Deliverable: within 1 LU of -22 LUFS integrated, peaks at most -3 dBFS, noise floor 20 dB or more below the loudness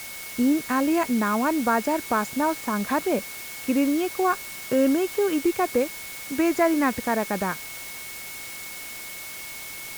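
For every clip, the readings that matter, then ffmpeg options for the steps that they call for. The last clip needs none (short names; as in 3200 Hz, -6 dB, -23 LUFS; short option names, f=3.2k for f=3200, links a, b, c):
steady tone 2200 Hz; tone level -40 dBFS; noise floor -37 dBFS; noise floor target -45 dBFS; loudness -25.0 LUFS; peak -9.0 dBFS; loudness target -22.0 LUFS
-> -af "bandreject=f=2.2k:w=30"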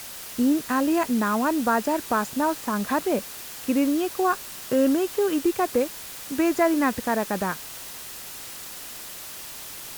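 steady tone none; noise floor -39 dBFS; noise floor target -45 dBFS
-> -af "afftdn=nr=6:nf=-39"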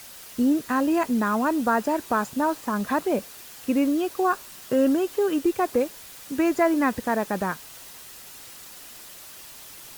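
noise floor -44 dBFS; noise floor target -45 dBFS
-> -af "afftdn=nr=6:nf=-44"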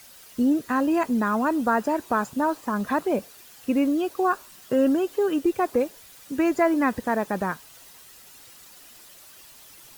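noise floor -49 dBFS; loudness -24.5 LUFS; peak -9.0 dBFS; loudness target -22.0 LUFS
-> -af "volume=2.5dB"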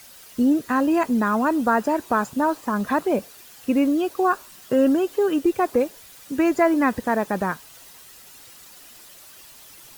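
loudness -22.0 LUFS; peak -6.5 dBFS; noise floor -46 dBFS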